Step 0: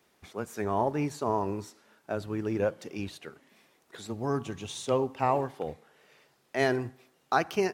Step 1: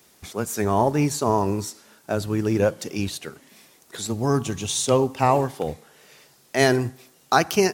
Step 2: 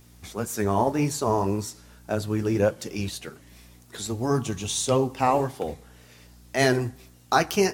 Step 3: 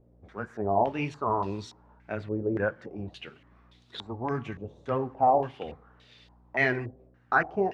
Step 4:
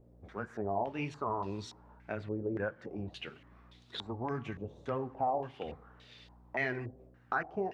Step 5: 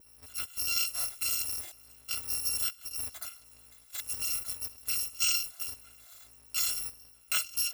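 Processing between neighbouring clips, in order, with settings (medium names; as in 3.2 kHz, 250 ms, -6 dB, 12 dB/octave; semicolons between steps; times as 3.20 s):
tone controls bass +4 dB, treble +11 dB; trim +7 dB
hum 60 Hz, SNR 25 dB; flange 1.8 Hz, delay 7.9 ms, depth 4.3 ms, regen -50%; trim +1.5 dB
step-sequenced low-pass 3.5 Hz 550–3700 Hz; trim -8 dB
compression 2:1, threshold -37 dBFS, peak gain reduction 10.5 dB
bit-reversed sample order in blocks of 256 samples; bass shelf 420 Hz -8 dB; trim +3.5 dB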